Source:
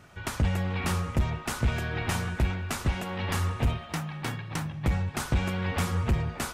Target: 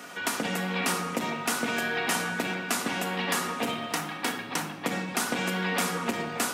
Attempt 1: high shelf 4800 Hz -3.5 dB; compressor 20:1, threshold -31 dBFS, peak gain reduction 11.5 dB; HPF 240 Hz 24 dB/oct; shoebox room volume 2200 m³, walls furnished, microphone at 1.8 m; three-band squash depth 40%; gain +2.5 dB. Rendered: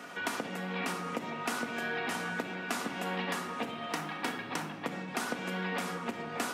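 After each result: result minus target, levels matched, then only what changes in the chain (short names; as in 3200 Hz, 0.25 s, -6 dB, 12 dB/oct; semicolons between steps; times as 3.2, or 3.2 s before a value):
compressor: peak gain reduction +11.5 dB; 8000 Hz band -5.0 dB
remove: compressor 20:1, threshold -31 dBFS, peak gain reduction 11.5 dB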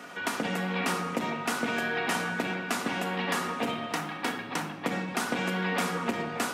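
8000 Hz band -5.0 dB
change: high shelf 4800 Hz +5.5 dB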